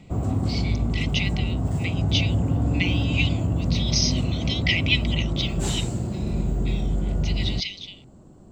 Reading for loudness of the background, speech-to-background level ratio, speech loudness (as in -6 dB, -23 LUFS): -25.5 LUFS, -2.5 dB, -28.0 LUFS